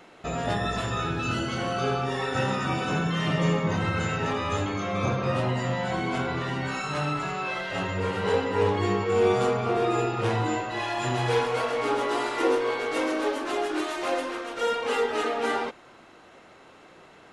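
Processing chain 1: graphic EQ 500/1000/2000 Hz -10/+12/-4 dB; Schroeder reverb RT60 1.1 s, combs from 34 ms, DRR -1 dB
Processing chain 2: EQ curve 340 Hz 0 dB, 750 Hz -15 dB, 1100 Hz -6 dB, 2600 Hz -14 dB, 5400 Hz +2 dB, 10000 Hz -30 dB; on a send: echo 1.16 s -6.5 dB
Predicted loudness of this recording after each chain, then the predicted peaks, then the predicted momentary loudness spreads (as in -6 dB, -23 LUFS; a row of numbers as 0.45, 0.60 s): -22.5, -30.0 LUFS; -8.5, -14.5 dBFS; 4, 8 LU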